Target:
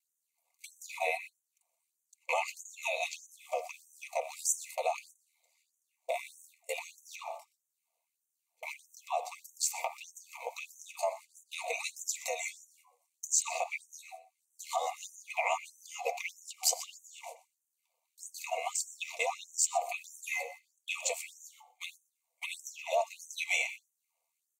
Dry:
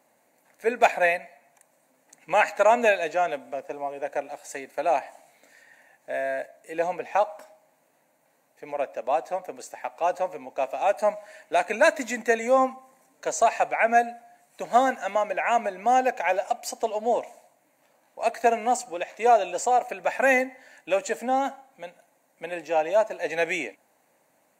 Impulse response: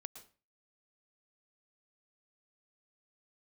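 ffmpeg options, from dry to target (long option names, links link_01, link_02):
-filter_complex "[0:a]equalizer=frequency=260:width_type=o:width=0.27:gain=9.5,acompressor=threshold=-36dB:ratio=3,bandreject=frequency=75.35:width_type=h:width=4,bandreject=frequency=150.7:width_type=h:width=4,bandreject=frequency=226.05:width_type=h:width=4,bandreject=frequency=301.4:width_type=h:width=4,bandreject=frequency=376.75:width_type=h:width=4,bandreject=frequency=452.1:width_type=h:width=4,bandreject=frequency=527.45:width_type=h:width=4,bandreject=frequency=602.8:width_type=h:width=4,bandreject=frequency=678.15:width_type=h:width=4,bandreject=frequency=753.5:width_type=h:width=4,bandreject=frequency=828.85:width_type=h:width=4,bandreject=frequency=904.2:width_type=h:width=4,bandreject=frequency=979.55:width_type=h:width=4,bandreject=frequency=1054.9:width_type=h:width=4,bandreject=frequency=1130.25:width_type=h:width=4,bandreject=frequency=1205.6:width_type=h:width=4,bandreject=frequency=1280.95:width_type=h:width=4,bandreject=frequency=1356.3:width_type=h:width=4,bandreject=frequency=1431.65:width_type=h:width=4,bandreject=frequency=1507:width_type=h:width=4,bandreject=frequency=1582.35:width_type=h:width=4,bandreject=frequency=1657.7:width_type=h:width=4,bandreject=frequency=1733.05:width_type=h:width=4,bandreject=frequency=1808.4:width_type=h:width=4,bandreject=frequency=1883.75:width_type=h:width=4,bandreject=frequency=1959.1:width_type=h:width=4,bandreject=frequency=2034.45:width_type=h:width=4,bandreject=frequency=2109.8:width_type=h:width=4,bandreject=frequency=2185.15:width_type=h:width=4,bandreject=frequency=2260.5:width_type=h:width=4,bandreject=frequency=2335.85:width_type=h:width=4,bandreject=frequency=2411.2:width_type=h:width=4,bandreject=frequency=2486.55:width_type=h:width=4,bandreject=frequency=2561.9:width_type=h:width=4,agate=range=-25dB:threshold=-47dB:ratio=16:detection=peak,aeval=exprs='val(0)*sin(2*PI*40*n/s)':channel_layout=same,asuperstop=centerf=1600:order=12:qfactor=2,aecho=1:1:123:0.126,asplit=2[link_01][link_02];[1:a]atrim=start_sample=2205,asetrate=57330,aresample=44100[link_03];[link_02][link_03]afir=irnorm=-1:irlink=0,volume=-3.5dB[link_04];[link_01][link_04]amix=inputs=2:normalize=0,alimiter=level_in=2.5dB:limit=-24dB:level=0:latency=1:release=113,volume=-2.5dB,highshelf=frequency=2100:gain=8.5,aecho=1:1:4.3:0.46,afftfilt=real='re*gte(b*sr/1024,460*pow(5900/460,0.5+0.5*sin(2*PI*1.6*pts/sr)))':imag='im*gte(b*sr/1024,460*pow(5900/460,0.5+0.5*sin(2*PI*1.6*pts/sr)))':win_size=1024:overlap=0.75,volume=5.5dB"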